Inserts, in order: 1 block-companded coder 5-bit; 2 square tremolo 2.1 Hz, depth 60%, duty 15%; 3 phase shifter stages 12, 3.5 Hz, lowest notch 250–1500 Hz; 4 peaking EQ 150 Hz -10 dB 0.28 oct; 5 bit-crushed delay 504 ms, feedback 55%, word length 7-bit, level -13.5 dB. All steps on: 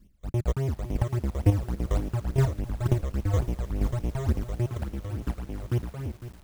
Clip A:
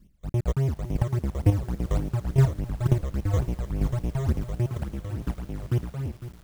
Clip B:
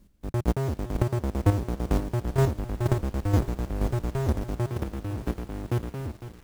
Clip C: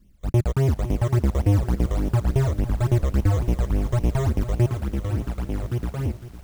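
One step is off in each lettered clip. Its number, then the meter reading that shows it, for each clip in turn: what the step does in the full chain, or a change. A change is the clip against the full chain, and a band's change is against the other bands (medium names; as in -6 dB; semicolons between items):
4, 125 Hz band +2.0 dB; 3, momentary loudness spread change -1 LU; 2, crest factor change -5.5 dB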